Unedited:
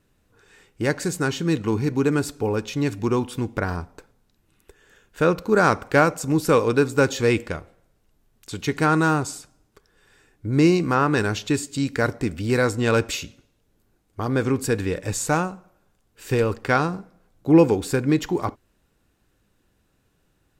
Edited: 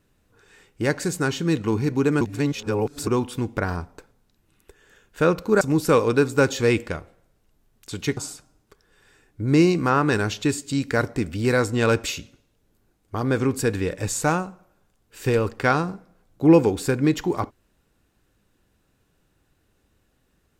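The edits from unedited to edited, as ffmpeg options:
ffmpeg -i in.wav -filter_complex "[0:a]asplit=5[link_01][link_02][link_03][link_04][link_05];[link_01]atrim=end=2.212[link_06];[link_02]atrim=start=2.208:end=3.072,asetpts=PTS-STARTPTS,areverse[link_07];[link_03]atrim=start=3.068:end=5.612[link_08];[link_04]atrim=start=6.208:end=8.772[link_09];[link_05]atrim=start=9.218[link_10];[link_06][link_07]acrossfade=duration=0.004:curve1=hsin:curve2=hsin[link_11];[link_11][link_08]acrossfade=duration=0.004:curve1=hsin:curve2=hsin[link_12];[link_12][link_09]acrossfade=duration=0.004:curve1=hsin:curve2=hsin[link_13];[link_13][link_10]acrossfade=duration=0.004:curve1=hsin:curve2=hsin" out.wav

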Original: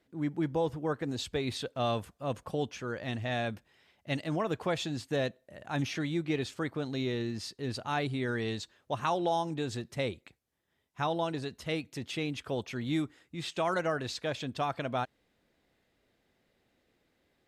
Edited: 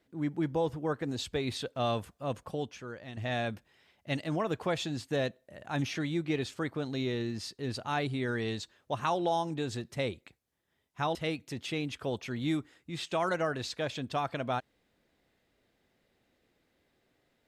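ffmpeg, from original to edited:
ffmpeg -i in.wav -filter_complex "[0:a]asplit=3[link_01][link_02][link_03];[link_01]atrim=end=3.17,asetpts=PTS-STARTPTS,afade=type=out:start_time=2.23:duration=0.94:silence=0.298538[link_04];[link_02]atrim=start=3.17:end=11.152,asetpts=PTS-STARTPTS,afade=type=in:duration=0.004:curve=hsin:silence=0.298538[link_05];[link_03]atrim=start=11.598[link_06];[link_04][link_05]concat=n=2:v=0:a=1[link_07];[link_07][link_06]acrossfade=duration=0.004:curve1=hsin:curve2=hsin" out.wav

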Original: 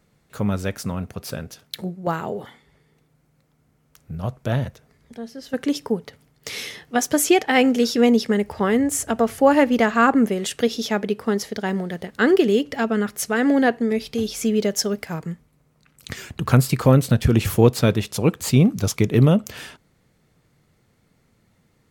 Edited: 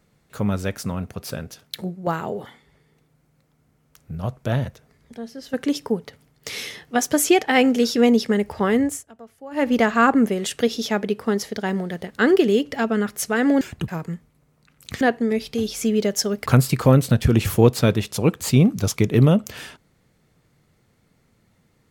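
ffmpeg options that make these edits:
ffmpeg -i in.wav -filter_complex "[0:a]asplit=7[link_01][link_02][link_03][link_04][link_05][link_06][link_07];[link_01]atrim=end=9.03,asetpts=PTS-STARTPTS,afade=type=out:start_time=8.84:duration=0.19:silence=0.0668344[link_08];[link_02]atrim=start=9.03:end=9.51,asetpts=PTS-STARTPTS,volume=-23.5dB[link_09];[link_03]atrim=start=9.51:end=13.612,asetpts=PTS-STARTPTS,afade=type=in:duration=0.19:silence=0.0668344[link_10];[link_04]atrim=start=16.188:end=16.462[link_11];[link_05]atrim=start=15.058:end=16.192[link_12];[link_06]atrim=start=13.608:end=15.062[link_13];[link_07]atrim=start=16.458[link_14];[link_08][link_09][link_10]concat=n=3:v=0:a=1[link_15];[link_15][link_11]acrossfade=duration=0.004:curve1=hsin:curve2=hsin[link_16];[link_16][link_12]acrossfade=duration=0.004:curve1=hsin:curve2=hsin[link_17];[link_17][link_13]acrossfade=duration=0.004:curve1=hsin:curve2=hsin[link_18];[link_18][link_14]acrossfade=duration=0.004:curve1=hsin:curve2=hsin" out.wav

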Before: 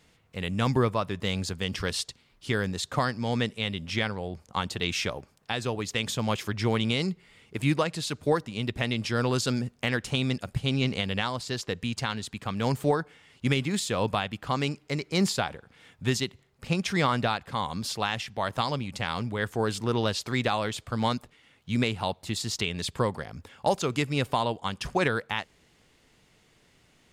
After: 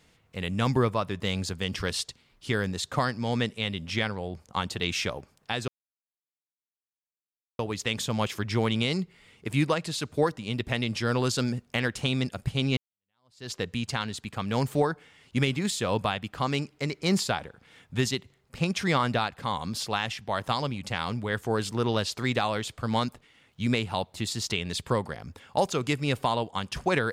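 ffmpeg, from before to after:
ffmpeg -i in.wav -filter_complex "[0:a]asplit=3[link_01][link_02][link_03];[link_01]atrim=end=5.68,asetpts=PTS-STARTPTS,afade=type=out:start_time=5.676:duration=0.004:curve=hsin,apad=pad_dur=1.91[link_04];[link_02]atrim=start=5.68:end=10.86,asetpts=PTS-STARTPTS,afade=type=in:duration=0.004:curve=hsin,afade=type=out:start_time=5.176:duration=0.004:curve=hsin[link_05];[link_03]atrim=start=10.86,asetpts=PTS-STARTPTS,afade=type=in:duration=0.74:curve=exp[link_06];[link_04][link_05][link_06]concat=n=3:v=0:a=1" out.wav

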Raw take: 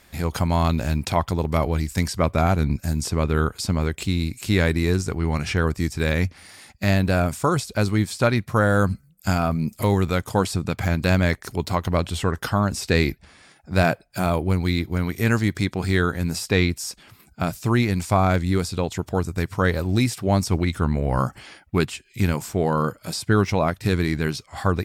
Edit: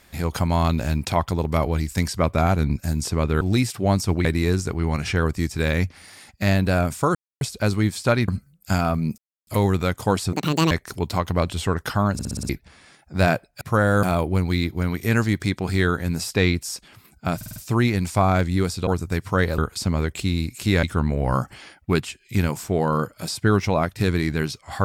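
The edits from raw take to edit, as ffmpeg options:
ffmpeg -i in.wav -filter_complex "[0:a]asplit=23[link_01][link_02][link_03][link_04][link_05][link_06][link_07][link_08][link_09][link_10][link_11][link_12][link_13][link_14][link_15][link_16][link_17][link_18][link_19][link_20][link_21][link_22][link_23];[link_01]atrim=end=3.412[link_24];[link_02]atrim=start=19.838:end=20.682[link_25];[link_03]atrim=start=4.658:end=7.56,asetpts=PTS-STARTPTS,afade=type=out:start_time=2.898:duration=0.004:curve=hsin,apad=pad_dur=0.26[link_26];[link_04]atrim=start=7.56:end=8.432,asetpts=PTS-STARTPTS,afade=type=in:duration=0.004:curve=hsin[link_27];[link_05]atrim=start=8.848:end=9.75,asetpts=PTS-STARTPTS,afade=type=out:start_time=0.898:duration=0.004:curve=hsin,apad=pad_dur=0.29[link_28];[link_06]atrim=start=9.75:end=10.614,asetpts=PTS-STARTPTS,afade=type=in:duration=0.004:curve=hsin[link_29];[link_07]atrim=start=10.61:end=11.28,asetpts=PTS-STARTPTS,asetrate=77616,aresample=44100,atrim=end_sample=16788,asetpts=PTS-STARTPTS[link_30];[link_08]atrim=start=11.276:end=12.762[link_31];[link_09]atrim=start=12.698:end=12.762[link_32];[link_10]atrim=start=12.698:end=12.762[link_33];[link_11]atrim=start=12.698:end=12.762[link_34];[link_12]atrim=start=12.698:end=12.762[link_35];[link_13]atrim=start=12.698:end=12.762[link_36];[link_14]atrim=start=13.058:end=14.182[link_37];[link_15]atrim=start=8.428:end=8.852[link_38];[link_16]atrim=start=14.178:end=17.562[link_39];[link_17]atrim=start=17.508:end=17.562[link_40];[link_18]atrim=start=17.508:end=17.562[link_41];[link_19]atrim=start=17.508:end=17.562[link_42];[link_20]atrim=start=17.508:end=18.822[link_43];[link_21]atrim=start=19.128:end=19.842[link_44];[link_22]atrim=start=3.408:end=4.662[link_45];[link_23]atrim=start=20.678[link_46];[link_24][link_25]acrossfade=duration=0.004:curve1=hsin:curve2=hsin[link_47];[link_26][link_27]concat=n=2:v=0:a=1[link_48];[link_47][link_48]acrossfade=duration=0.004:curve1=hsin:curve2=hsin[link_49];[link_28][link_29]concat=n=2:v=0:a=1[link_50];[link_49][link_50]acrossfade=duration=0.004:curve1=hsin:curve2=hsin[link_51];[link_51][link_30]acrossfade=duration=0.004:curve1=hsin:curve2=hsin[link_52];[link_52][link_31]acrossfade=duration=0.004:curve1=hsin:curve2=hsin[link_53];[link_53][link_32]acrossfade=duration=0.004:curve1=hsin:curve2=hsin[link_54];[link_54][link_33]acrossfade=duration=0.004:curve1=hsin:curve2=hsin[link_55];[link_55][link_34]acrossfade=duration=0.004:curve1=hsin:curve2=hsin[link_56];[link_56][link_35]acrossfade=duration=0.004:curve1=hsin:curve2=hsin[link_57];[link_57][link_36]acrossfade=duration=0.004:curve1=hsin:curve2=hsin[link_58];[link_58][link_37]acrossfade=duration=0.004:curve1=hsin:curve2=hsin[link_59];[link_59][link_38]acrossfade=duration=0.004:curve1=hsin:curve2=hsin[link_60];[link_60][link_39]acrossfade=duration=0.004:curve1=hsin:curve2=hsin[link_61];[link_61][link_40]acrossfade=duration=0.004:curve1=hsin:curve2=hsin[link_62];[link_62][link_41]acrossfade=duration=0.004:curve1=hsin:curve2=hsin[link_63];[link_63][link_42]acrossfade=duration=0.004:curve1=hsin:curve2=hsin[link_64];[link_64][link_43]acrossfade=duration=0.004:curve1=hsin:curve2=hsin[link_65];[link_65][link_44]acrossfade=duration=0.004:curve1=hsin:curve2=hsin[link_66];[link_66][link_45]acrossfade=duration=0.004:curve1=hsin:curve2=hsin[link_67];[link_67][link_46]acrossfade=duration=0.004:curve1=hsin:curve2=hsin" out.wav

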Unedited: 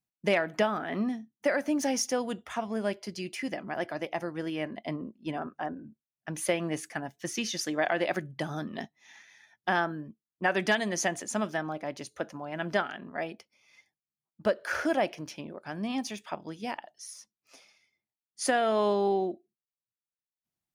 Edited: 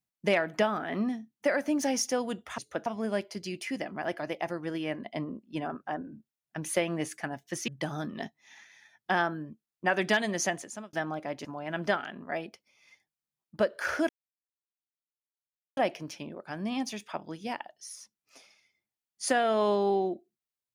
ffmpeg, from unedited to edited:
ffmpeg -i in.wav -filter_complex "[0:a]asplit=7[link_01][link_02][link_03][link_04][link_05][link_06][link_07];[link_01]atrim=end=2.582[link_08];[link_02]atrim=start=12.028:end=12.312[link_09];[link_03]atrim=start=2.578:end=7.402[link_10];[link_04]atrim=start=8.258:end=11.51,asetpts=PTS-STARTPTS,afade=type=out:start_time=2.762:duration=0.49[link_11];[link_05]atrim=start=11.51:end=12.032,asetpts=PTS-STARTPTS,afade=type=in:duration=0.004:curve=hsin[link_12];[link_06]atrim=start=12.308:end=14.95,asetpts=PTS-STARTPTS,afade=type=out:start_time=2.638:duration=0.004:curve=hsin,apad=pad_dur=1.68[link_13];[link_07]atrim=start=14.95,asetpts=PTS-STARTPTS,afade=type=in:duration=0.004:curve=hsin[link_14];[link_08][link_09]acrossfade=duration=0.004:curve1=hsin:curve2=hsin[link_15];[link_15][link_10]acrossfade=duration=0.004:curve1=hsin:curve2=hsin[link_16];[link_11][link_12]concat=n=2:v=0:a=1[link_17];[link_16][link_17]acrossfade=duration=0.004:curve1=hsin:curve2=hsin[link_18];[link_13][link_14]concat=n=2:v=0:a=1[link_19];[link_18][link_19]acrossfade=duration=0.004:curve1=hsin:curve2=hsin" out.wav

